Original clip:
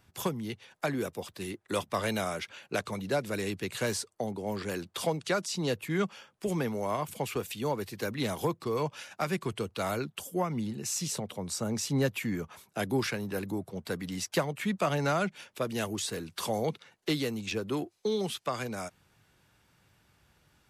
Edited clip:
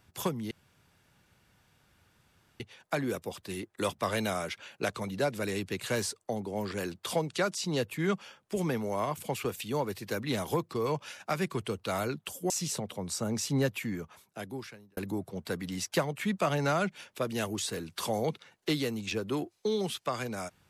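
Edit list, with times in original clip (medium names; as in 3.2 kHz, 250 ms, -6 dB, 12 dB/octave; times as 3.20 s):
0.51 s: insert room tone 2.09 s
10.41–10.90 s: delete
11.95–13.37 s: fade out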